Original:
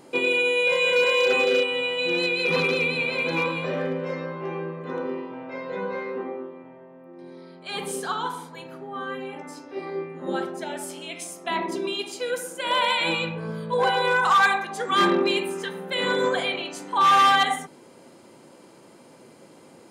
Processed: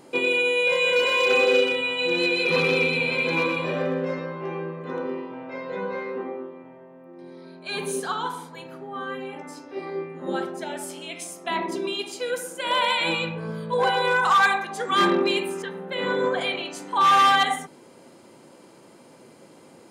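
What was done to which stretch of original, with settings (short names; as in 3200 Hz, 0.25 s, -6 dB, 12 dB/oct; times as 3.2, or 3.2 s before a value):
0.87–4.19 echo 0.123 s -5.5 dB
7.44–8 ripple EQ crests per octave 1.5, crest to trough 9 dB
15.62–16.41 LPF 1900 Hz 6 dB/oct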